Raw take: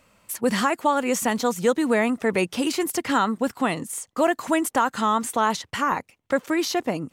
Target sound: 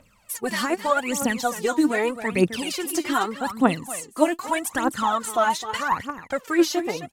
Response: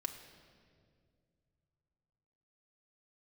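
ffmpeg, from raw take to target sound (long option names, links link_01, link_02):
-af "aecho=1:1:262:0.282,aphaser=in_gain=1:out_gain=1:delay=3.5:decay=0.76:speed=0.82:type=triangular,volume=-4dB"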